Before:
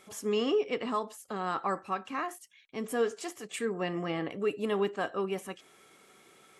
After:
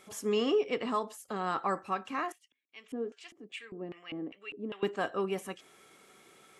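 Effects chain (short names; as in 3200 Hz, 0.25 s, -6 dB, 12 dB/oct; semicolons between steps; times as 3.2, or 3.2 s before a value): 2.32–4.83 LFO band-pass square 2.5 Hz 280–2700 Hz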